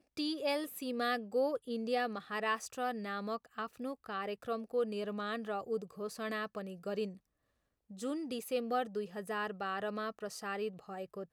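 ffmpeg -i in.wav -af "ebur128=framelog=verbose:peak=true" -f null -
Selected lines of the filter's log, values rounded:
Integrated loudness:
  I:         -37.8 LUFS
  Threshold: -47.9 LUFS
Loudness range:
  LRA:         4.4 LU
  Threshold: -58.4 LUFS
  LRA low:   -40.4 LUFS
  LRA high:  -36.0 LUFS
True peak:
  Peak:      -20.7 dBFS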